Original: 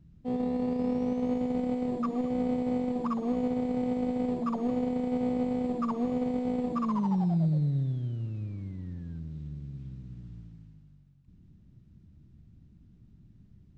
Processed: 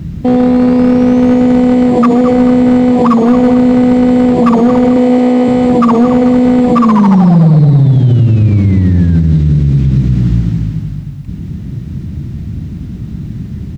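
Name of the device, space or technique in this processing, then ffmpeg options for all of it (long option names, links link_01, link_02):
mastering chain: -filter_complex "[0:a]asettb=1/sr,asplit=3[link_01][link_02][link_03];[link_01]atrim=end=4.964[link_04];[link_02]atrim=start=4.96:end=5.48,asetpts=PTS-STARTPTS,afade=type=in:duration=0.004:curve=qsin,afade=type=out:start_time=0.516:duration=0.004:curve=qsin,highpass=290[link_05];[link_03]atrim=start=5.476[link_06];[link_04][link_05]acrossfade=duration=0.004:curve1=hsin:curve2=qsin[link_07];[link_07][link_06]acrossfade=duration=0.004:curve1=qsin:curve2=hsin,highpass=51,equalizer=frequency=2000:width_type=o:width=0.28:gain=3,aecho=1:1:220|440|660|880:0.316|0.13|0.0532|0.0218,acompressor=threshold=-34dB:ratio=1.5,asoftclip=type=hard:threshold=-26.5dB,alimiter=level_in=36dB:limit=-1dB:release=50:level=0:latency=1,volume=-1dB"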